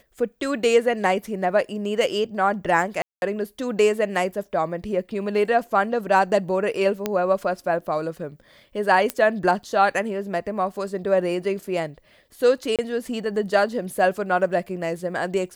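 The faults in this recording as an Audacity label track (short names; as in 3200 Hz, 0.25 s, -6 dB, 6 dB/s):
3.020000	3.220000	gap 0.201 s
7.060000	7.060000	pop -9 dBFS
9.100000	9.100000	pop -7 dBFS
12.760000	12.790000	gap 27 ms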